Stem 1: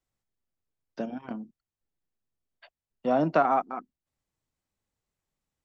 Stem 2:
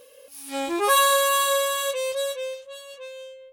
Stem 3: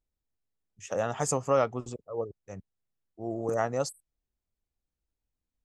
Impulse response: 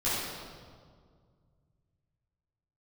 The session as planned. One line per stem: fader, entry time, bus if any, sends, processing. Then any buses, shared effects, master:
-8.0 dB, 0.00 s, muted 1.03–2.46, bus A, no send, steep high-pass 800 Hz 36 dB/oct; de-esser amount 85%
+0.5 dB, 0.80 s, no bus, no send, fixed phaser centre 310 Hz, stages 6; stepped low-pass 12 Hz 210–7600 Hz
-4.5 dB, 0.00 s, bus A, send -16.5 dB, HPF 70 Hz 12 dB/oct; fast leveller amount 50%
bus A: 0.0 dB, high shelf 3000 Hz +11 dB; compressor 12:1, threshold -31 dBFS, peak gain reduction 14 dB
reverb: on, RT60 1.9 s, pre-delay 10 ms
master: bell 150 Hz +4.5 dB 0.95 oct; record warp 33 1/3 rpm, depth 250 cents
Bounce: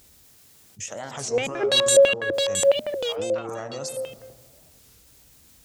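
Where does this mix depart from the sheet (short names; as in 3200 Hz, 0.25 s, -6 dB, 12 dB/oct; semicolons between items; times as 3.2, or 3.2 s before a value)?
stem 3: send -16.5 dB -> -23 dB; master: missing bell 150 Hz +4.5 dB 0.95 oct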